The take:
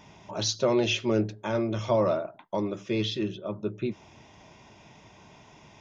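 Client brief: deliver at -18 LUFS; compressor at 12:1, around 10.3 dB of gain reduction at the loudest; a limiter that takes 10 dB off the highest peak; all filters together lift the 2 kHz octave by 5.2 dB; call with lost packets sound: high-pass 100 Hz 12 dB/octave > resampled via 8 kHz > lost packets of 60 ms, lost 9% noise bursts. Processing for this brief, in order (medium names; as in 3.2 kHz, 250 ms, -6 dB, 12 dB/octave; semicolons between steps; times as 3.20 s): peaking EQ 2 kHz +7.5 dB; compression 12:1, threshold -29 dBFS; peak limiter -27 dBFS; high-pass 100 Hz 12 dB/octave; resampled via 8 kHz; lost packets of 60 ms, lost 9% noise bursts; trim +20 dB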